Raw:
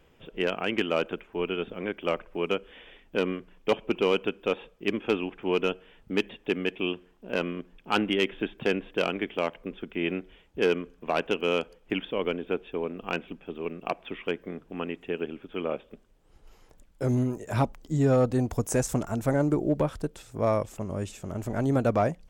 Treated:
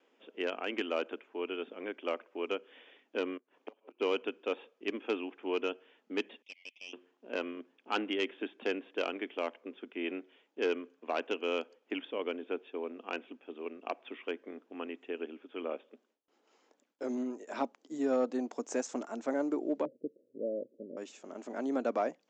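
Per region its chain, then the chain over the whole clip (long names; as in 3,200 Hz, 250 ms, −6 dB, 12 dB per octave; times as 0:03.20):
0:03.37–0:04.00: parametric band 760 Hz +7 dB 2.6 octaves + downward compressor 4 to 1, threshold −24 dBFS + gate with flip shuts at −28 dBFS, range −26 dB
0:06.42–0:06.93: Butterworth high-pass 2,100 Hz 96 dB per octave + tube saturation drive 31 dB, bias 0.8
0:19.85–0:20.97: Butterworth low-pass 580 Hz 96 dB per octave + parametric band 130 Hz +12 dB 0.46 octaves
whole clip: elliptic high-pass filter 250 Hz, stop band 70 dB; noise gate with hold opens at −60 dBFS; Butterworth low-pass 7,400 Hz 72 dB per octave; level −6.5 dB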